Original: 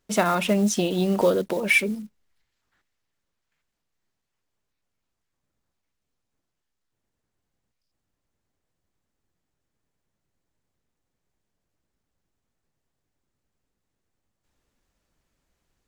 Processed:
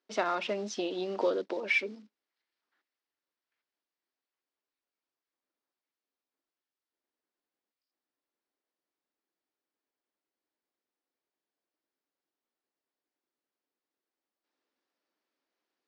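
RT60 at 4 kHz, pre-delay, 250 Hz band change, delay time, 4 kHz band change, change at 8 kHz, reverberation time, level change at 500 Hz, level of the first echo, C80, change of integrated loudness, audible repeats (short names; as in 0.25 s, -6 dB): none, none, -14.5 dB, none, -8.5 dB, -16.0 dB, none, -8.5 dB, none, none, -9.5 dB, none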